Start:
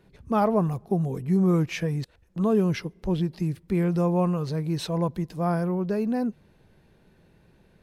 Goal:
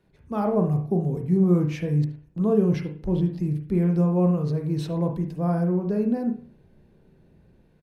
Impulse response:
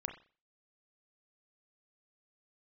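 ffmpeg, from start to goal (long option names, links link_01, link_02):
-filter_complex "[0:a]acrossover=split=600|1600[link_01][link_02][link_03];[link_01]dynaudnorm=framelen=290:gausssize=3:maxgain=8.5dB[link_04];[link_04][link_02][link_03]amix=inputs=3:normalize=0,aecho=1:1:74:0.1[link_05];[1:a]atrim=start_sample=2205,asetrate=39690,aresample=44100[link_06];[link_05][link_06]afir=irnorm=-1:irlink=0,volume=-6dB"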